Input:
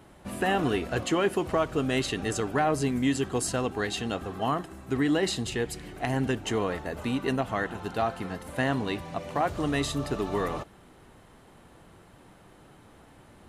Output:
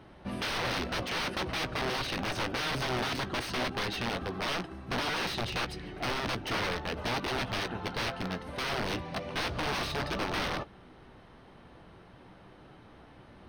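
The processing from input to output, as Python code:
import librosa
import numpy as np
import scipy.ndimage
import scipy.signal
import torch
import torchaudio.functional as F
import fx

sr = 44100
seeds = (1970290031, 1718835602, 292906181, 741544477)

y = (np.mod(10.0 ** (26.0 / 20.0) * x + 1.0, 2.0) - 1.0) / 10.0 ** (26.0 / 20.0)
y = scipy.signal.savgol_filter(y, 15, 4, mode='constant')
y = fx.doubler(y, sr, ms=16.0, db=-12.5)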